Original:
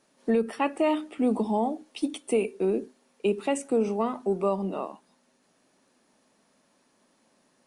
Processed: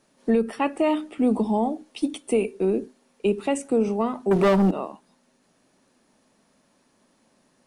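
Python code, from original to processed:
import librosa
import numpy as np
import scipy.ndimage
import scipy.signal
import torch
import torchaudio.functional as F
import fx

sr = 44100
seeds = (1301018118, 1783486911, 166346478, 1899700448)

y = fx.low_shelf(x, sr, hz=140.0, db=9.5)
y = fx.leveller(y, sr, passes=3, at=(4.31, 4.71))
y = y * 10.0 ** (1.5 / 20.0)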